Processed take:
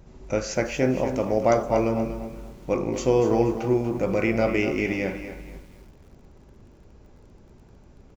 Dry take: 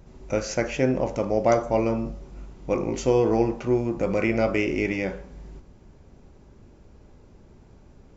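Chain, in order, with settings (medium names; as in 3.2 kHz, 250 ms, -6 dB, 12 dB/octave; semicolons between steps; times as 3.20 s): feedback delay 262 ms, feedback 24%, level -18 dB; bit-crushed delay 239 ms, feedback 35%, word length 8-bit, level -10.5 dB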